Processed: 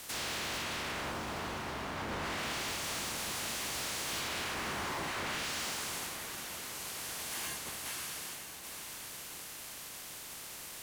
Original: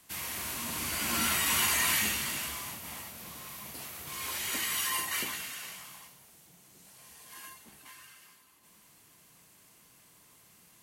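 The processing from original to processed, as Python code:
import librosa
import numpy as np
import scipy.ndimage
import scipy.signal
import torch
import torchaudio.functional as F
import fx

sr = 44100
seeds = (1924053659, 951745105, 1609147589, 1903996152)

y = fx.spec_clip(x, sr, under_db=16)
y = fx.env_lowpass_down(y, sr, base_hz=1100.0, full_db=-28.0)
y = fx.over_compress(y, sr, threshold_db=-43.0, ratio=-0.5)
y = fx.leveller(y, sr, passes=5)
y = fx.echo_diffused(y, sr, ms=988, feedback_pct=48, wet_db=-9)
y = y * 10.0 ** (-5.5 / 20.0)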